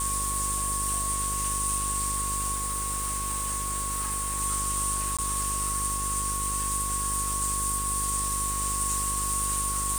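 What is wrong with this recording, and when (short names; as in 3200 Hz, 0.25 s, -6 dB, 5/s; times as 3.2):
buzz 50 Hz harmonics 11 -35 dBFS
tone 1100 Hz -32 dBFS
2.54–4.41 clipped -26 dBFS
5.17–5.19 gap 16 ms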